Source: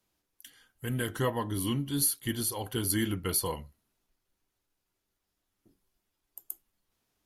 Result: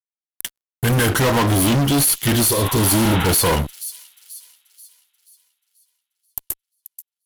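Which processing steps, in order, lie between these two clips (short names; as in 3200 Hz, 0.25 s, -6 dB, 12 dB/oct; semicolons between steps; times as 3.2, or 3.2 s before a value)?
fuzz box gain 44 dB, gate -49 dBFS; spectral repair 2.56–3.25, 710–4000 Hz both; thin delay 0.484 s, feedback 44%, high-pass 5200 Hz, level -12 dB; gain -1.5 dB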